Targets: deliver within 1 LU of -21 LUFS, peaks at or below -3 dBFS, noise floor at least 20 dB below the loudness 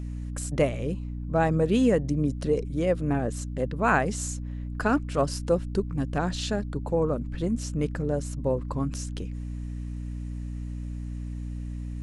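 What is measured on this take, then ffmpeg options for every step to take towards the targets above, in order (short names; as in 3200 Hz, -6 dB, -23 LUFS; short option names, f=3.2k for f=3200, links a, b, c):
hum 60 Hz; harmonics up to 300 Hz; hum level -31 dBFS; loudness -28.5 LUFS; peak -9.5 dBFS; loudness target -21.0 LUFS
-> -af "bandreject=f=60:t=h:w=6,bandreject=f=120:t=h:w=6,bandreject=f=180:t=h:w=6,bandreject=f=240:t=h:w=6,bandreject=f=300:t=h:w=6"
-af "volume=7.5dB,alimiter=limit=-3dB:level=0:latency=1"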